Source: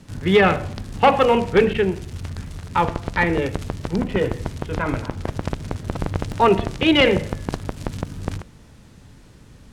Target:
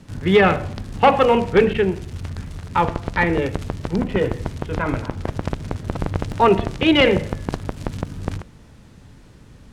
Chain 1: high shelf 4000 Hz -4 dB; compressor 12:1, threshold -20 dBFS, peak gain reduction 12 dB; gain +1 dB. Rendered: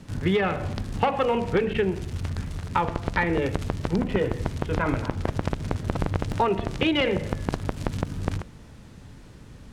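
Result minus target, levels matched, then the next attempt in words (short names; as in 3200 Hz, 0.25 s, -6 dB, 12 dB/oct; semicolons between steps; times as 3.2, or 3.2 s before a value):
compressor: peak gain reduction +12 dB
high shelf 4000 Hz -4 dB; gain +1 dB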